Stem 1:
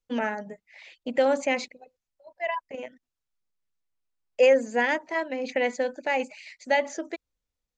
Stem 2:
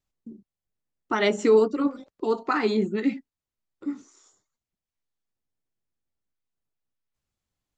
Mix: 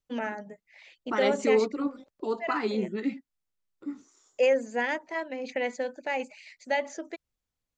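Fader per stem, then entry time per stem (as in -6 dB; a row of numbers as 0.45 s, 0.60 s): -4.5 dB, -5.5 dB; 0.00 s, 0.00 s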